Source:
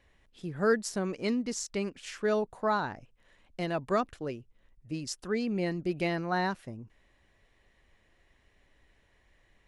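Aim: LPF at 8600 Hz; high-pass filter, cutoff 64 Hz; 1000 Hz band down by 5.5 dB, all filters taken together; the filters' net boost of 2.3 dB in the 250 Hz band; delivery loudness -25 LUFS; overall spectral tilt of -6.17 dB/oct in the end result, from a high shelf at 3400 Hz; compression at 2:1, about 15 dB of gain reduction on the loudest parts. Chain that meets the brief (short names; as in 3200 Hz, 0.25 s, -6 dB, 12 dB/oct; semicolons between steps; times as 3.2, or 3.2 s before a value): HPF 64 Hz; LPF 8600 Hz; bell 250 Hz +3.5 dB; bell 1000 Hz -7 dB; high shelf 3400 Hz -9 dB; compressor 2:1, threshold -49 dBFS; gain +19.5 dB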